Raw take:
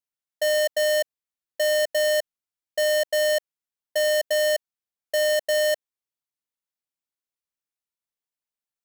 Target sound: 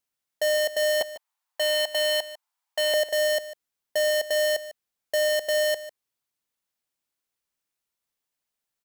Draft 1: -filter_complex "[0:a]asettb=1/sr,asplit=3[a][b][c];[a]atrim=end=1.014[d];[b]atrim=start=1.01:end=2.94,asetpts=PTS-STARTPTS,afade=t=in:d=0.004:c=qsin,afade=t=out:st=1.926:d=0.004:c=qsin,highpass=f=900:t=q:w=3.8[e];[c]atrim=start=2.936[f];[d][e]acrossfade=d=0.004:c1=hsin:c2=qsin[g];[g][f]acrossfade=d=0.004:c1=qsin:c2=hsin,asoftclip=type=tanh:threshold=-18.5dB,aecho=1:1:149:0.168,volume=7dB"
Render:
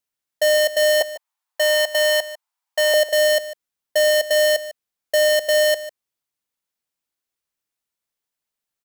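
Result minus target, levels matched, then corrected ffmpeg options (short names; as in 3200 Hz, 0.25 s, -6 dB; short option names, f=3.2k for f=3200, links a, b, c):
soft clip: distortion -11 dB
-filter_complex "[0:a]asettb=1/sr,asplit=3[a][b][c];[a]atrim=end=1.014[d];[b]atrim=start=1.01:end=2.94,asetpts=PTS-STARTPTS,afade=t=in:d=0.004:c=qsin,afade=t=out:st=1.926:d=0.004:c=qsin,highpass=f=900:t=q:w=3.8[e];[c]atrim=start=2.936[f];[d][e]acrossfade=d=0.004:c1=hsin:c2=qsin[g];[g][f]acrossfade=d=0.004:c1=qsin:c2=hsin,asoftclip=type=tanh:threshold=-29dB,aecho=1:1:149:0.168,volume=7dB"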